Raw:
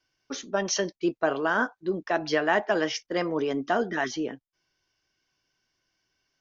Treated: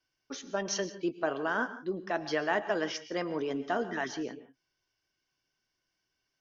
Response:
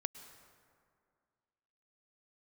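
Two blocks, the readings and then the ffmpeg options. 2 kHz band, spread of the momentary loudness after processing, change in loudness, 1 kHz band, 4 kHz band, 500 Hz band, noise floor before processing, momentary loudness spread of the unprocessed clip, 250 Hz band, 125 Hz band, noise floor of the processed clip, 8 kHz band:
−6.0 dB, 8 LU, −6.0 dB, −6.0 dB, −6.0 dB, −6.0 dB, −85 dBFS, 9 LU, −6.0 dB, −5.5 dB, −83 dBFS, can't be measured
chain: -filter_complex "[1:a]atrim=start_sample=2205,afade=type=out:start_time=0.23:duration=0.01,atrim=end_sample=10584[link_01];[0:a][link_01]afir=irnorm=-1:irlink=0,volume=-4.5dB"

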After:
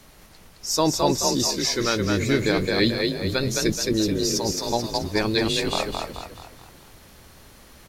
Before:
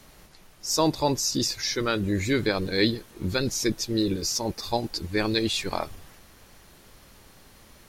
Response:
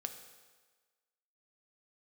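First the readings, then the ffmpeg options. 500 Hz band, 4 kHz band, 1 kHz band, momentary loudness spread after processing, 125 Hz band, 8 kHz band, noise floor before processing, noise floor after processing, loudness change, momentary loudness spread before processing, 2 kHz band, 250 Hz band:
+4.0 dB, +3.5 dB, +3.5 dB, 6 LU, +3.0 dB, +3.5 dB, −54 dBFS, −50 dBFS, +3.5 dB, 6 LU, +3.5 dB, +3.0 dB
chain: -filter_complex "[0:a]asplit=7[link_01][link_02][link_03][link_04][link_05][link_06][link_07];[link_02]adelay=215,afreqshift=35,volume=-3.5dB[link_08];[link_03]adelay=430,afreqshift=70,volume=-10.6dB[link_09];[link_04]adelay=645,afreqshift=105,volume=-17.8dB[link_10];[link_05]adelay=860,afreqshift=140,volume=-24.9dB[link_11];[link_06]adelay=1075,afreqshift=175,volume=-32dB[link_12];[link_07]adelay=1290,afreqshift=210,volume=-39.2dB[link_13];[link_01][link_08][link_09][link_10][link_11][link_12][link_13]amix=inputs=7:normalize=0,volume=1.5dB"

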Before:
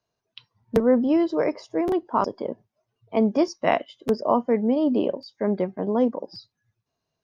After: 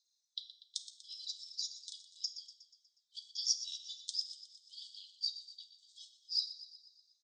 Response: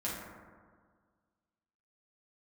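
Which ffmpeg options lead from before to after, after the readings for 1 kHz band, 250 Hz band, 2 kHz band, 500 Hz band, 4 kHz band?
below −40 dB, below −40 dB, below −40 dB, below −40 dB, +6.0 dB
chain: -filter_complex "[0:a]aphaser=in_gain=1:out_gain=1:delay=4.6:decay=0.45:speed=0.89:type=sinusoidal,asuperpass=centerf=5600:order=20:qfactor=1.1,aecho=1:1:121|242|363|484|605|726:0.224|0.128|0.0727|0.0415|0.0236|0.0135,asplit=2[link_01][link_02];[1:a]atrim=start_sample=2205[link_03];[link_02][link_03]afir=irnorm=-1:irlink=0,volume=-4.5dB[link_04];[link_01][link_04]amix=inputs=2:normalize=0,volume=4dB"

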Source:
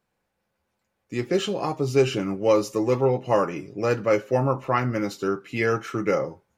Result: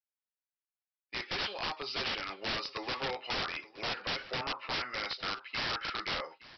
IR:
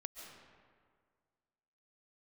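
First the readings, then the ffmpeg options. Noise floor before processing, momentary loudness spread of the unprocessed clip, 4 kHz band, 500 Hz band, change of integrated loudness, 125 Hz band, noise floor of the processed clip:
−78 dBFS, 6 LU, +3.5 dB, −20.5 dB, −11.0 dB, −21.5 dB, below −85 dBFS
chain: -af "agate=range=-33dB:threshold=-32dB:ratio=3:detection=peak,highpass=1500,acompressor=threshold=-43dB:ratio=1.5,aresample=11025,aeval=exprs='(mod(63.1*val(0)+1,2)-1)/63.1':channel_layout=same,aresample=44100,aecho=1:1:868:0.112,volume=7.5dB"

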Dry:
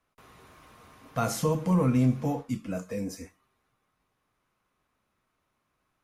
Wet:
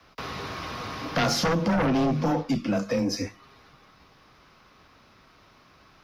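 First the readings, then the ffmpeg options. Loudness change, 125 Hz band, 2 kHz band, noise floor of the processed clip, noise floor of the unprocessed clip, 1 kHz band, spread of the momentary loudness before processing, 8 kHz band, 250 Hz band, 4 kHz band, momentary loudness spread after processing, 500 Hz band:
+1.5 dB, −1.5 dB, +12.0 dB, −57 dBFS, −78 dBFS, +6.5 dB, 12 LU, +3.5 dB, +2.5 dB, +14.0 dB, 11 LU, +4.5 dB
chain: -filter_complex "[0:a]acrossover=split=160|1500[link_01][link_02][link_03];[link_01]asoftclip=type=hard:threshold=-36dB[link_04];[link_04][link_02][link_03]amix=inputs=3:normalize=0,afreqshift=17,aeval=exprs='0.178*sin(PI/2*2.82*val(0)/0.178)':channel_layout=same,acompressor=threshold=-40dB:ratio=2,highshelf=frequency=6500:width_type=q:width=3:gain=-9,volume=7.5dB"

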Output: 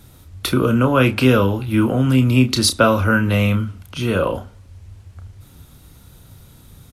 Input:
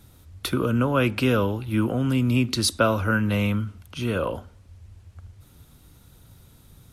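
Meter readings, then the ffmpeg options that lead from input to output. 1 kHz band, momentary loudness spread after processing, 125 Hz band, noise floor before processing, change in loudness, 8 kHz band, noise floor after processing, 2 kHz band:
+6.5 dB, 9 LU, +7.0 dB, −53 dBFS, +6.5 dB, +6.5 dB, −47 dBFS, +6.5 dB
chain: -filter_complex "[0:a]asplit=2[link_01][link_02];[link_02]adelay=31,volume=-8.5dB[link_03];[link_01][link_03]amix=inputs=2:normalize=0,volume=6dB"

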